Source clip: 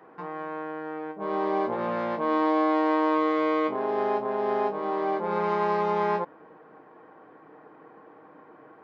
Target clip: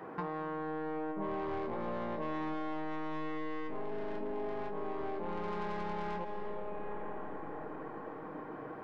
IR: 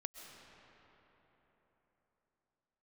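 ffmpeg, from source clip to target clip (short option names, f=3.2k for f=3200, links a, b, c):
-filter_complex "[0:a]asettb=1/sr,asplit=3[a][b][c];[a]atrim=end=3.914[d];[b]atrim=start=3.91:end=4.32,asetpts=PTS-STARTPTS,afade=t=in:d=0.004:c=qsin,afade=t=out:st=0.406:d=0.004:c=qsin,aecho=1:1:4.4:0.73,atrim=end_sample=18081[e];[c]atrim=start=4.316[f];[d][e]acrossfade=d=0.004:c1=hsin:c2=qsin[g];[g][f]acrossfade=d=0.004:c1=qsin:c2=hsin,asoftclip=type=tanh:threshold=-24.5dB,lowshelf=f=170:g=10,asplit=2[h][i];[1:a]atrim=start_sample=2205[j];[i][j]afir=irnorm=-1:irlink=0,volume=5.5dB[k];[h][k]amix=inputs=2:normalize=0,acompressor=threshold=-32dB:ratio=16,volume=-2dB"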